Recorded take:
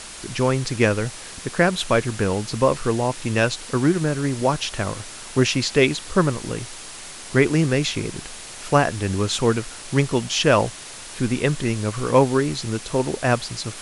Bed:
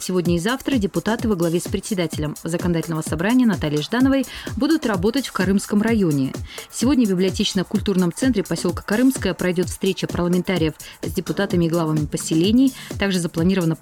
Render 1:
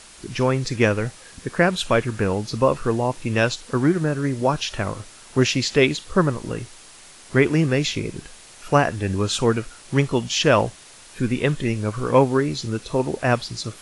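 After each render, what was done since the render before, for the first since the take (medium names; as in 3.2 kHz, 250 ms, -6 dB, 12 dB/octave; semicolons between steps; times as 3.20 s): noise print and reduce 8 dB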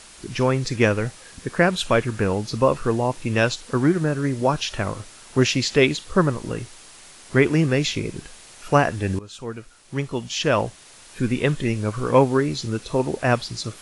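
9.19–11.27 s: fade in, from -20 dB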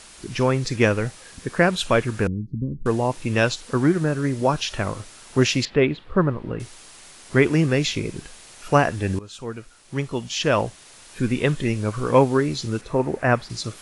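2.27–2.86 s: inverse Chebyshev low-pass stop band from 700 Hz, stop band 50 dB; 5.65–6.60 s: distance through air 450 m; 12.81–13.50 s: resonant high shelf 2.6 kHz -7.5 dB, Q 1.5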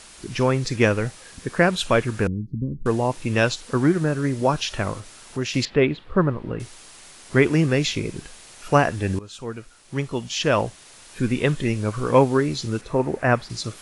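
4.99–5.54 s: compression 1.5:1, threshold -36 dBFS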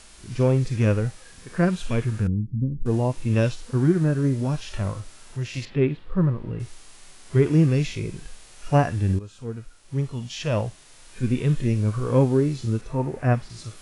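harmonic-percussive split percussive -17 dB; bass shelf 110 Hz +9 dB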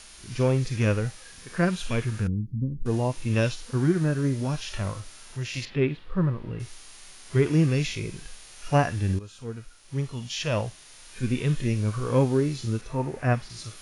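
tilt shelf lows -3.5 dB, about 1.2 kHz; band-stop 7.8 kHz, Q 7.1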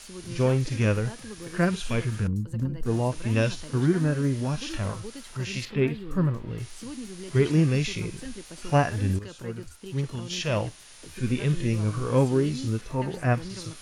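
add bed -21.5 dB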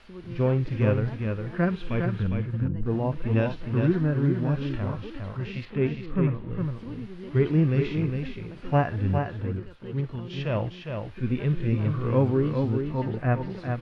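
distance through air 400 m; delay 408 ms -5.5 dB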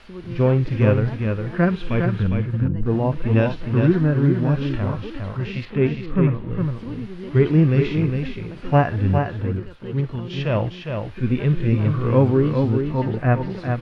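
trim +6 dB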